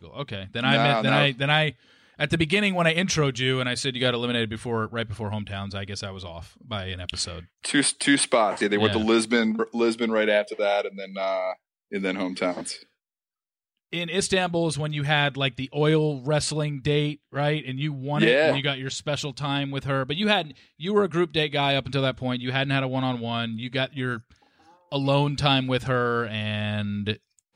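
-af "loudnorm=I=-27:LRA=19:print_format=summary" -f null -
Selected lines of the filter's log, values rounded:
Input Integrated:    -24.6 LUFS
Input True Peak:      -7.1 dBTP
Input LRA:             5.3 LU
Input Threshold:     -34.9 LUFS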